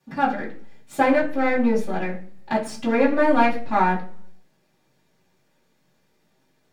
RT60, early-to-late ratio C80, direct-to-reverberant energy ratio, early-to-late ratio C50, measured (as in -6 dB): 0.50 s, 15.0 dB, -12.0 dB, 10.0 dB